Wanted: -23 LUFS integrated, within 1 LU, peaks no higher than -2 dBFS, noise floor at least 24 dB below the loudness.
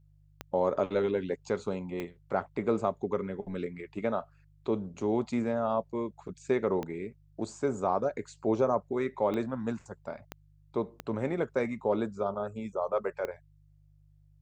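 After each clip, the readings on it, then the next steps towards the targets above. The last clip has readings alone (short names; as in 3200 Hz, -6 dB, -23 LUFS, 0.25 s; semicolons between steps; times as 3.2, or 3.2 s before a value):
clicks 7; hum 50 Hz; harmonics up to 150 Hz; hum level -60 dBFS; loudness -32.0 LUFS; peak -14.5 dBFS; loudness target -23.0 LUFS
-> de-click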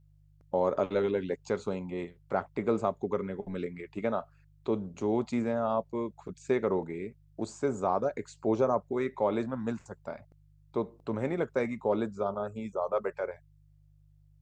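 clicks 0; hum 50 Hz; harmonics up to 150 Hz; hum level -60 dBFS
-> de-hum 50 Hz, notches 3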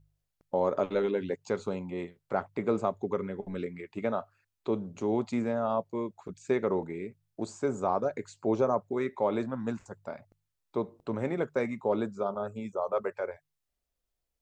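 hum none; loudness -32.5 LUFS; peak -14.5 dBFS; loudness target -23.0 LUFS
-> gain +9.5 dB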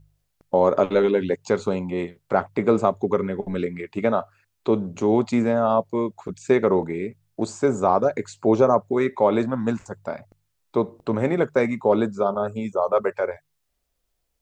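loudness -23.0 LUFS; peak -5.0 dBFS; noise floor -74 dBFS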